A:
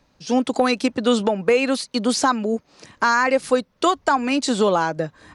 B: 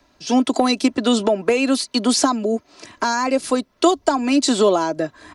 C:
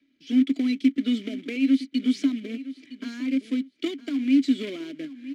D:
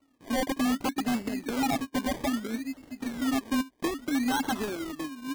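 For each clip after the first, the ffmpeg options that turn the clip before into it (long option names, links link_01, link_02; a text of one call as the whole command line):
ffmpeg -i in.wav -filter_complex "[0:a]lowshelf=frequency=140:gain=-6.5,aecho=1:1:3:0.52,acrossover=split=220|780|3500[link_01][link_02][link_03][link_04];[link_03]acompressor=threshold=-32dB:ratio=6[link_05];[link_01][link_02][link_05][link_04]amix=inputs=4:normalize=0,volume=4dB" out.wav
ffmpeg -i in.wav -filter_complex "[0:a]acrusher=bits=2:mode=log:mix=0:aa=0.000001,asplit=3[link_01][link_02][link_03];[link_01]bandpass=frequency=270:width_type=q:width=8,volume=0dB[link_04];[link_02]bandpass=frequency=2290:width_type=q:width=8,volume=-6dB[link_05];[link_03]bandpass=frequency=3010:width_type=q:width=8,volume=-9dB[link_06];[link_04][link_05][link_06]amix=inputs=3:normalize=0,aecho=1:1:963|1926:0.168|0.0285" out.wav
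ffmpeg -i in.wav -af "acrusher=samples=26:mix=1:aa=0.000001:lfo=1:lforange=15.6:lforate=0.62,aeval=exprs='0.0841*(abs(mod(val(0)/0.0841+3,4)-2)-1)':channel_layout=same" out.wav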